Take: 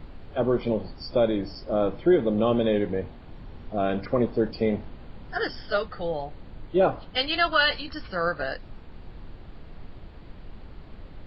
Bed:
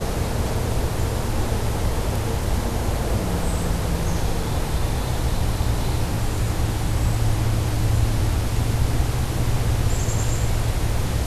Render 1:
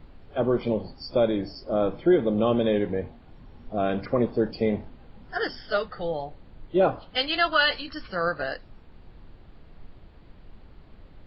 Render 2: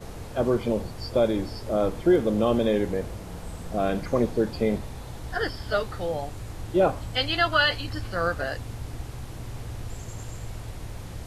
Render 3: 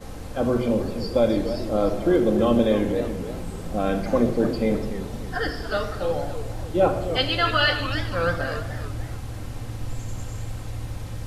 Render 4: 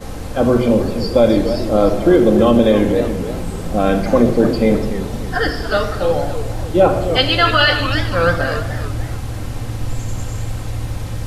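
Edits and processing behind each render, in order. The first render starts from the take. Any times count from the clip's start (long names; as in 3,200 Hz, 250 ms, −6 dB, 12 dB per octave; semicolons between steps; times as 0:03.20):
noise reduction from a noise print 6 dB
mix in bed −15 dB
rectangular room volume 3,800 cubic metres, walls furnished, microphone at 2.1 metres; feedback echo with a swinging delay time 293 ms, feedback 41%, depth 215 cents, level −11 dB
level +8.5 dB; brickwall limiter −2 dBFS, peak gain reduction 2.5 dB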